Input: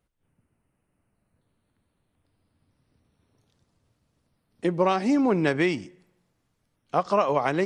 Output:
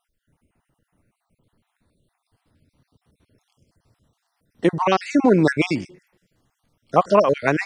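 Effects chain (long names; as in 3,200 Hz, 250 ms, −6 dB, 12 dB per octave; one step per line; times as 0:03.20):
time-frequency cells dropped at random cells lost 40%
level +8 dB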